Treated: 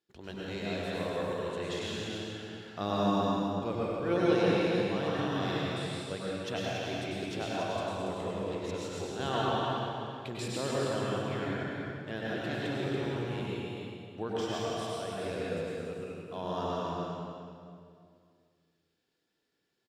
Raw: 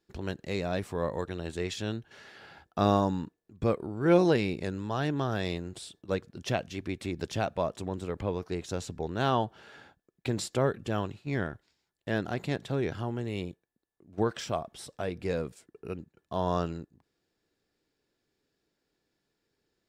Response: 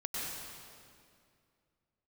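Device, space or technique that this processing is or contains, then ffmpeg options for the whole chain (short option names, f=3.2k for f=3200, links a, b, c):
stadium PA: -filter_complex "[0:a]highpass=f=160:p=1,equalizer=f=3.2k:t=o:w=0.53:g=5.5,aecho=1:1:209.9|282.8:0.282|0.501[a];[1:a]atrim=start_sample=2205[b];[a][b]afir=irnorm=-1:irlink=0,volume=-5.5dB"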